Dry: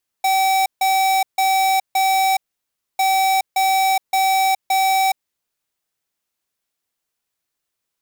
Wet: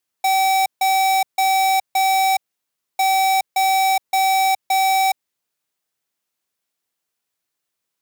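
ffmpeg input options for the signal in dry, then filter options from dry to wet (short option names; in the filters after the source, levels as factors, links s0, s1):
-f lavfi -i "aevalsrc='0.15*(2*lt(mod(767*t,1),0.5)-1)*clip(min(mod(mod(t,2.75),0.57),0.42-mod(mod(t,2.75),0.57))/0.005,0,1)*lt(mod(t,2.75),2.28)':d=5.5:s=44100"
-af "highpass=100"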